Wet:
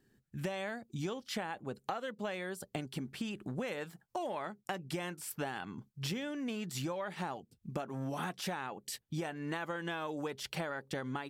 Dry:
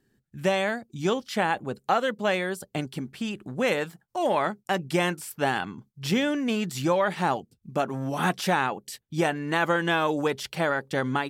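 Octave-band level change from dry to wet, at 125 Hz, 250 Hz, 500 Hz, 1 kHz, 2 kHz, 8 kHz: −9.0, −11.5, −13.5, −14.0, −14.0, −7.5 decibels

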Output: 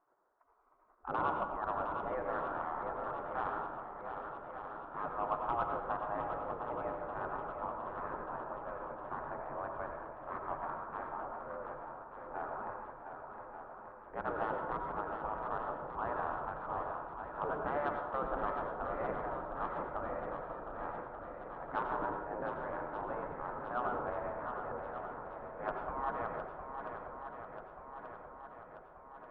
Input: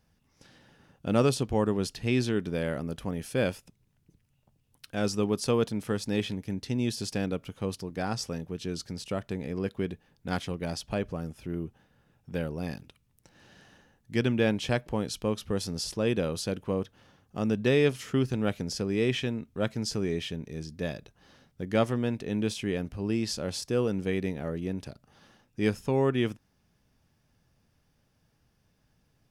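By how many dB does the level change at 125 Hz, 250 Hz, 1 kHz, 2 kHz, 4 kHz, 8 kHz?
−20.0 dB, −18.5 dB, +5.5 dB, −6.5 dB, below −25 dB, below −40 dB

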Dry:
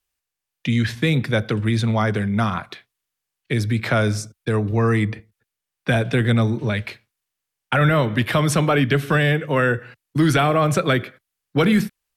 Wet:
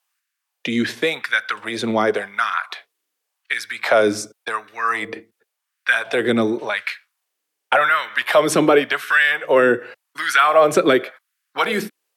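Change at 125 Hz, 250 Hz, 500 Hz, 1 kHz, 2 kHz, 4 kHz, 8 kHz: −18.0, −3.5, +4.0, +4.5, +5.5, +2.5, +2.0 decibels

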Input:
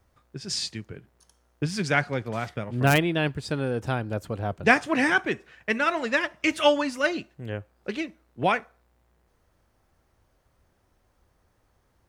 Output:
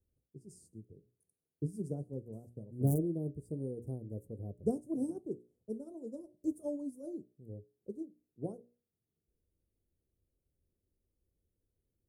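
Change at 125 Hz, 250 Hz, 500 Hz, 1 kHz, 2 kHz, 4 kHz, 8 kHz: −8.5 dB, −9.0 dB, −14.0 dB, −30.0 dB, below −40 dB, below −40 dB, −17.5 dB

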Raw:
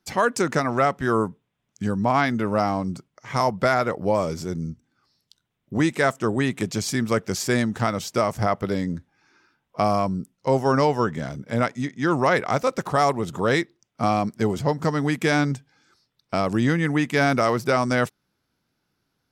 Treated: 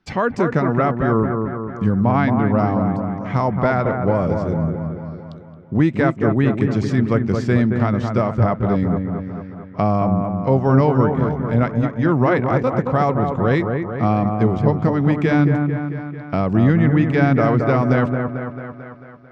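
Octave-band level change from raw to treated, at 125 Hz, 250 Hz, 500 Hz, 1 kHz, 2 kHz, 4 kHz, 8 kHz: +10.0 dB, +7.0 dB, +3.5 dB, +1.5 dB, −0.5 dB, −7.5 dB, below −15 dB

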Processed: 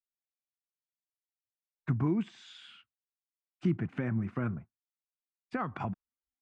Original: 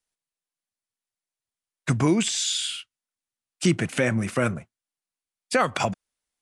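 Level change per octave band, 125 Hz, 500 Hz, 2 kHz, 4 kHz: −6.0, −14.0, −16.0, −25.0 decibels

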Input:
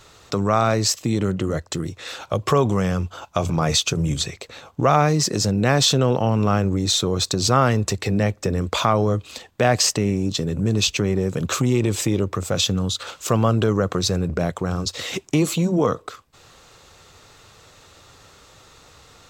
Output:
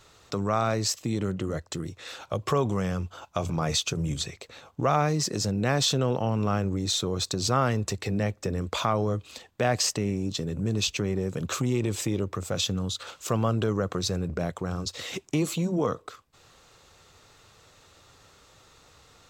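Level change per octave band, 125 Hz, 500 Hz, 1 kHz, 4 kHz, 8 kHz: −7.0, −7.0, −7.0, −7.0, −7.0 decibels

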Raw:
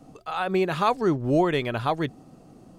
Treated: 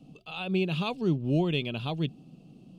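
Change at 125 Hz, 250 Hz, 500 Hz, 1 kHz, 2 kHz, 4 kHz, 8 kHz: +0.5 dB, −3.0 dB, −7.5 dB, −13.5 dB, −5.5 dB, +0.5 dB, can't be measured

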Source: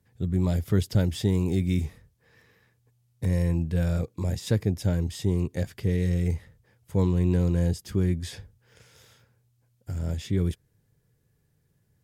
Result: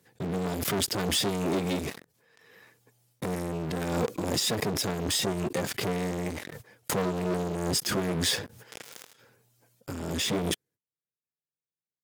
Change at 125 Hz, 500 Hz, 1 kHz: −10.0, +1.5, +10.0 decibels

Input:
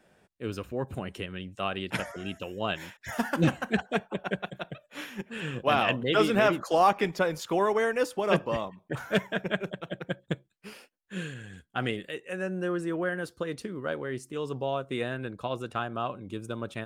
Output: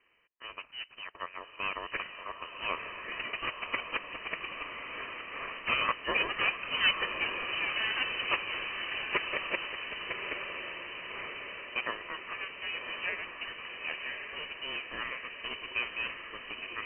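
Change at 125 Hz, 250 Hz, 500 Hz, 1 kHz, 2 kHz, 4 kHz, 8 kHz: −21.5 dB, −18.0 dB, −15.0 dB, −7.0 dB, +1.5 dB, +4.0 dB, below −30 dB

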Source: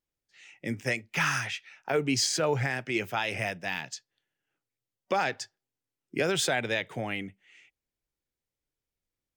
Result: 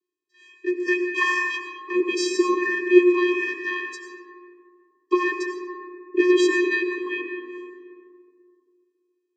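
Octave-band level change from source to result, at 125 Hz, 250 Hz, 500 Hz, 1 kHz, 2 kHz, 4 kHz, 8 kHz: below −30 dB, +13.5 dB, +10.0 dB, +3.0 dB, +7.0 dB, −1.0 dB, −4.0 dB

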